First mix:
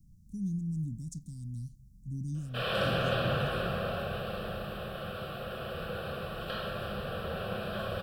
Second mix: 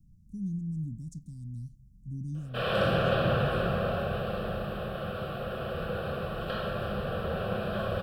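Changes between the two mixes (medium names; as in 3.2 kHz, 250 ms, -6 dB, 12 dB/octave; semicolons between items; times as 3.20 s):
background +5.0 dB; master: add treble shelf 2 kHz -8 dB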